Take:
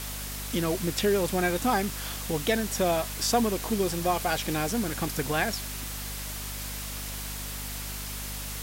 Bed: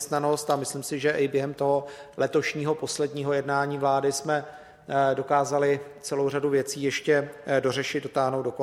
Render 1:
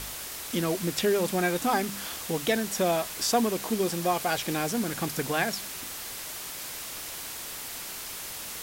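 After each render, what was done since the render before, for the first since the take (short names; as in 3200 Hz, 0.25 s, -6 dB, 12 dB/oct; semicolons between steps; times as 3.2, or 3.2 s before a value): de-hum 50 Hz, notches 5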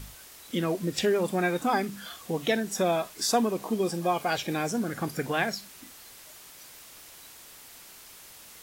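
noise print and reduce 11 dB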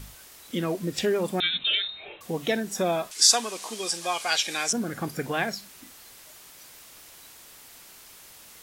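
1.4–2.21 inverted band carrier 3900 Hz; 3.11–4.73 weighting filter ITU-R 468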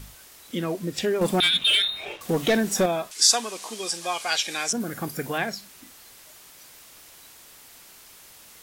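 1.21–2.86 sample leveller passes 2; 4.8–5.38 high shelf 11000 Hz +11.5 dB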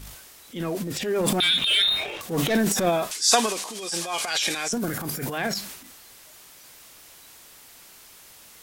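transient shaper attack -9 dB, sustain +10 dB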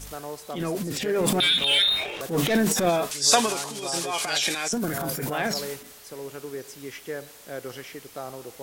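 add bed -12 dB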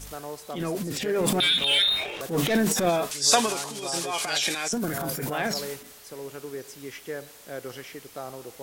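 gain -1 dB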